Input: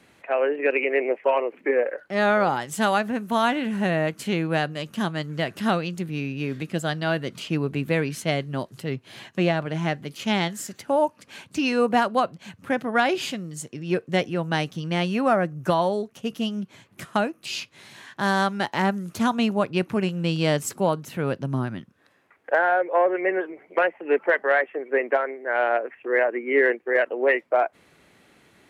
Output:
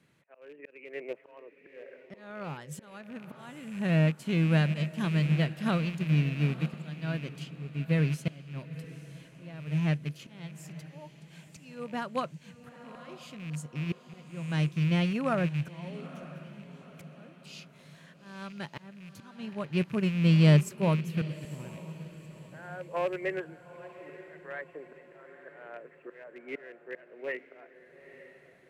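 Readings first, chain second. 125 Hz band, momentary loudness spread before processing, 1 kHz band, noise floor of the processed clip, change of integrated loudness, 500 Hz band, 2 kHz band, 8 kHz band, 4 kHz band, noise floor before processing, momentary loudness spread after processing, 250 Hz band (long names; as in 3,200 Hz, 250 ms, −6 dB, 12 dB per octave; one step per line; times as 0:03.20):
+2.0 dB, 9 LU, −17.0 dB, −57 dBFS, −5.5 dB, −14.5 dB, −14.0 dB, −12.5 dB, −10.5 dB, −59 dBFS, 22 LU, −5.0 dB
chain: loose part that buzzes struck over −34 dBFS, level −23 dBFS
parametric band 150 Hz +14.5 dB 0.48 octaves
volume swells 622 ms
parametric band 770 Hz −7.5 dB 0.26 octaves
feedback delay with all-pass diffusion 904 ms, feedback 46%, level −11 dB
expander for the loud parts 1.5 to 1, over −29 dBFS
level −4.5 dB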